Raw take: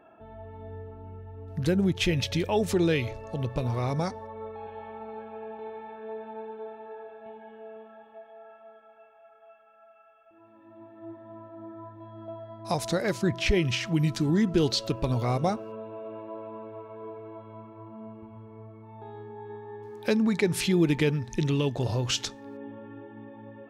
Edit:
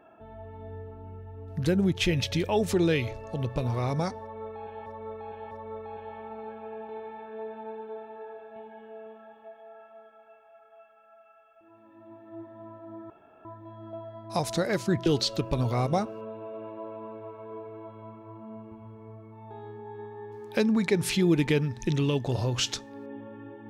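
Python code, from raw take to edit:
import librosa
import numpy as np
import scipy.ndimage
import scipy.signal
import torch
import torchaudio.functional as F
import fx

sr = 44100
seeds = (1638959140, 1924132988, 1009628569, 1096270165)

y = fx.edit(x, sr, fx.repeat(start_s=4.21, length_s=0.65, count=3),
    fx.insert_room_tone(at_s=11.8, length_s=0.35),
    fx.cut(start_s=13.41, length_s=1.16), tone=tone)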